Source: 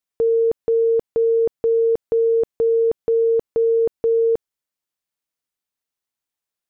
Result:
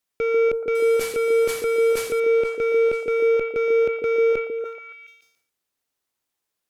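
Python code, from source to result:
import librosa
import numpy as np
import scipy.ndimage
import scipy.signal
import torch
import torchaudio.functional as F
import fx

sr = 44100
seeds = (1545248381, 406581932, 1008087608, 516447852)

p1 = fx.delta_mod(x, sr, bps=64000, step_db=-37.5, at=(0.75, 2.2))
p2 = fx.cheby_harmonics(p1, sr, harmonics=(5,), levels_db=(-10,), full_scale_db=-13.0)
p3 = fx.clip_asym(p2, sr, top_db=-32.0, bottom_db=-17.5)
p4 = p2 + (p3 * librosa.db_to_amplitude(-7.5))
p5 = fx.highpass(p4, sr, hz=43.0, slope=12, at=(3.63, 4.11))
p6 = p5 + fx.echo_stepped(p5, sr, ms=142, hz=340.0, octaves=0.7, feedback_pct=70, wet_db=-0.5, dry=0)
p7 = fx.sustainer(p6, sr, db_per_s=82.0)
y = p7 * librosa.db_to_amplitude(-6.0)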